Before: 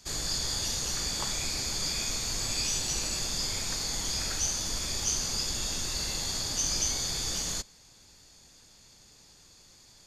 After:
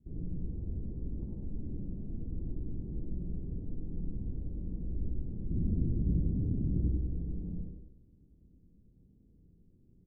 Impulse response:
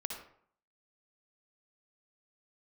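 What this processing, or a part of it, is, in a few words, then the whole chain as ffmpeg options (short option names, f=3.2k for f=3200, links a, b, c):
next room: -filter_complex "[0:a]asettb=1/sr,asplit=3[a][b][c];[a]atrim=end=5.514[d];[b]atrim=start=5.51:end=6.89,asetpts=PTS-STARTPTS,afade=t=in:d=0.004:c=qsin,afade=t=out:st=1.376:d=0.004:c=qsin,equalizer=f=140:w=0.35:g=11[e];[c]atrim=start=6.886[f];[d][e]acrossfade=d=0.004:c1=hsin:c2=qsin[g];[g][f]acrossfade=d=0.004:c1=qsin:c2=hsin,lowpass=f=310:w=0.5412,lowpass=f=310:w=1.3066,aecho=1:1:97|194|291|388:0.422|0.164|0.0641|0.025[h];[1:a]atrim=start_sample=2205[i];[h][i]afir=irnorm=-1:irlink=0,volume=2dB"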